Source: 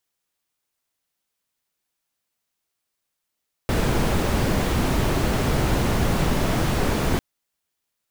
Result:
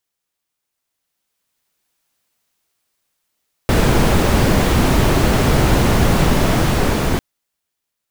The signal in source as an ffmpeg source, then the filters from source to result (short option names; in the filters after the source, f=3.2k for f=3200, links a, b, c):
-f lavfi -i "anoisesrc=c=brown:a=0.442:d=3.5:r=44100:seed=1"
-af "dynaudnorm=f=430:g=7:m=11dB"